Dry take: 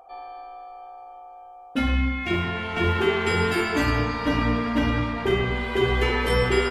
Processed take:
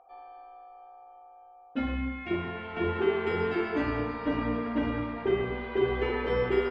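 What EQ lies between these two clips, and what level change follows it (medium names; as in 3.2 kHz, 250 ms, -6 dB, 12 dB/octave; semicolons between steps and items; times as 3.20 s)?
tone controls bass -4 dB, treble -5 dB; dynamic bell 370 Hz, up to +6 dB, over -35 dBFS, Q 0.75; distance through air 200 m; -8.0 dB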